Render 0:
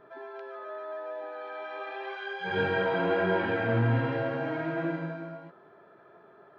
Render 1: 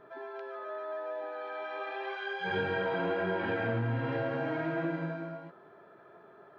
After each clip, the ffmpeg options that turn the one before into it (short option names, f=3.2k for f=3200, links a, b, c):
-af "acompressor=threshold=-28dB:ratio=6"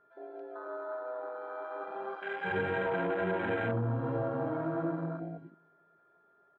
-filter_complex "[0:a]asplit=2[a][b];[b]adelay=296,lowpass=f=2k:p=1,volume=-16dB,asplit=2[c][d];[d]adelay=296,lowpass=f=2k:p=1,volume=0.38,asplit=2[e][f];[f]adelay=296,lowpass=f=2k:p=1,volume=0.38[g];[a][c][e][g]amix=inputs=4:normalize=0,aeval=exprs='val(0)+0.00355*sin(2*PI*1400*n/s)':c=same,afwtdn=0.0178"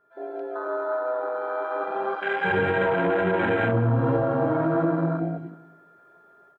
-af "alimiter=level_in=2dB:limit=-24dB:level=0:latency=1:release=38,volume=-2dB,dynaudnorm=f=100:g=3:m=11.5dB,aecho=1:1:188|376|564:0.126|0.0428|0.0146"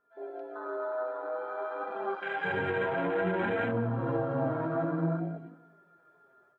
-af "flanger=delay=3.8:depth=4.6:regen=39:speed=0.54:shape=triangular,volume=-3.5dB"